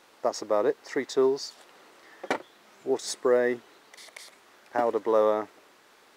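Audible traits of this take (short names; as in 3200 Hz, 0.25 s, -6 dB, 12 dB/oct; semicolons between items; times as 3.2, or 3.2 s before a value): noise floor -58 dBFS; spectral tilt -3.5 dB/oct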